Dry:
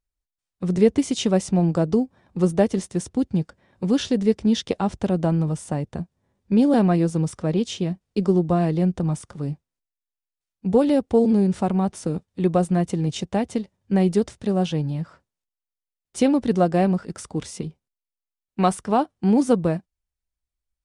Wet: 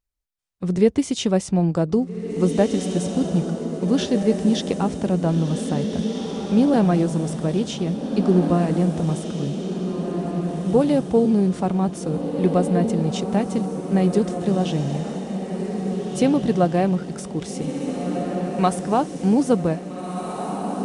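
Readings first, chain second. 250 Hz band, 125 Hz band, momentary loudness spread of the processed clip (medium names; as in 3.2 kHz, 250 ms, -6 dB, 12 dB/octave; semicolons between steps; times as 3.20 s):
+1.5 dB, +1.5 dB, 9 LU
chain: echo that smears into a reverb 1715 ms, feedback 46%, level -5.5 dB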